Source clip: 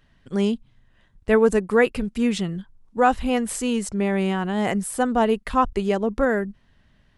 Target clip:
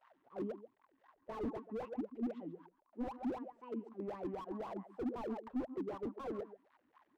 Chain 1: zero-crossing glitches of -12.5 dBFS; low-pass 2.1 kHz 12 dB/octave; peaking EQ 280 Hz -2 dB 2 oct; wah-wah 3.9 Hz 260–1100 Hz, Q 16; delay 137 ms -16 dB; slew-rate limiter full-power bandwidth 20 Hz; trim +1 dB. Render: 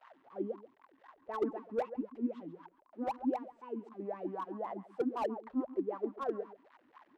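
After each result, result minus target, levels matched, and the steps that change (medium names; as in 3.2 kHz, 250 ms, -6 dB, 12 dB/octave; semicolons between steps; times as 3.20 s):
slew-rate limiter: distortion -10 dB; zero-crossing glitches: distortion +9 dB
change: slew-rate limiter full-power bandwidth 5 Hz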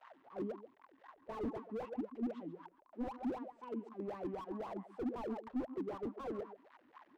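zero-crossing glitches: distortion +9 dB
change: zero-crossing glitches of -21.5 dBFS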